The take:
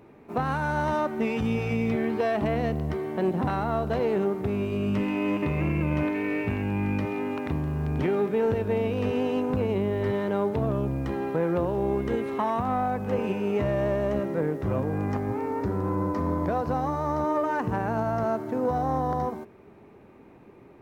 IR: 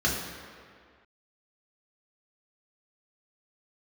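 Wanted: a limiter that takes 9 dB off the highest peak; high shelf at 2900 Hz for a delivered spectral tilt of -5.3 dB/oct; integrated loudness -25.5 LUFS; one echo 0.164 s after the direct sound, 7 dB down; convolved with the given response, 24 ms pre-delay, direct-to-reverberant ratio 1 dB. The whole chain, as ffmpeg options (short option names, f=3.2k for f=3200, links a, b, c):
-filter_complex "[0:a]highshelf=f=2.9k:g=8.5,alimiter=limit=-22.5dB:level=0:latency=1,aecho=1:1:164:0.447,asplit=2[a][b];[1:a]atrim=start_sample=2205,adelay=24[c];[b][c]afir=irnorm=-1:irlink=0,volume=-13dB[d];[a][d]amix=inputs=2:normalize=0,volume=1dB"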